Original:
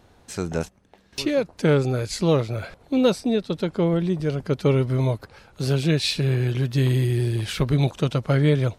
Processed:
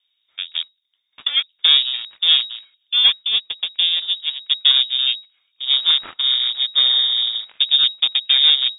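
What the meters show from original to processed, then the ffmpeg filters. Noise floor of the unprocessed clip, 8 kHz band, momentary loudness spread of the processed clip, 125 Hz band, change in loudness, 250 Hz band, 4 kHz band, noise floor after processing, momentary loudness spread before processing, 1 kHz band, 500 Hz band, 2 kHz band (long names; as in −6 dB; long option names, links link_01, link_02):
−56 dBFS, below −40 dB, 13 LU, below −40 dB, +7.5 dB, below −30 dB, +21.0 dB, −71 dBFS, 10 LU, −5.5 dB, below −25 dB, +4.0 dB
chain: -af "aeval=exprs='0.398*(cos(1*acos(clip(val(0)/0.398,-1,1)))-cos(1*PI/2))+0.0631*(cos(7*acos(clip(val(0)/0.398,-1,1)))-cos(7*PI/2))':channel_layout=same,lowpass=frequency=3200:width_type=q:width=0.5098,lowpass=frequency=3200:width_type=q:width=0.6013,lowpass=frequency=3200:width_type=q:width=0.9,lowpass=frequency=3200:width_type=q:width=2.563,afreqshift=-3800,crystalizer=i=4.5:c=0,volume=-4dB"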